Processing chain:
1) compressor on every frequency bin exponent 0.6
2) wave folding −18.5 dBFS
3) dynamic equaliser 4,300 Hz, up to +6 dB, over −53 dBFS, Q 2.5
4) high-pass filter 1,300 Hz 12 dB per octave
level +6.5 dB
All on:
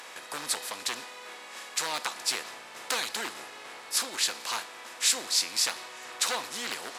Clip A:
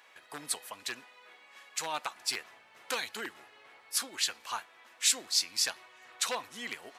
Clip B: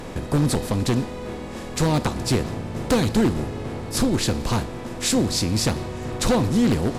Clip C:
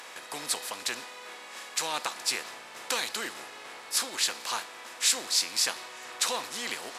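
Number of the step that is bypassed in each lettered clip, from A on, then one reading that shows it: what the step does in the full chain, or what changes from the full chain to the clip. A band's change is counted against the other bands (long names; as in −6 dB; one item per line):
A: 1, change in crest factor +2.5 dB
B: 4, 250 Hz band +27.0 dB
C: 2, distortion level −13 dB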